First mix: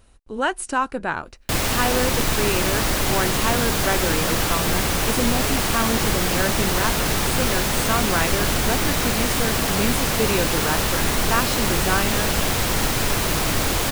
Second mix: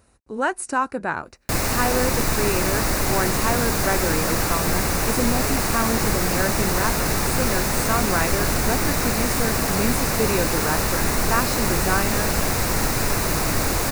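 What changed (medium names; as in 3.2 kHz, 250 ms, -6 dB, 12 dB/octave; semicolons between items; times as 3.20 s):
speech: add high-pass 74 Hz; master: add peaking EQ 3.2 kHz -12.5 dB 0.38 oct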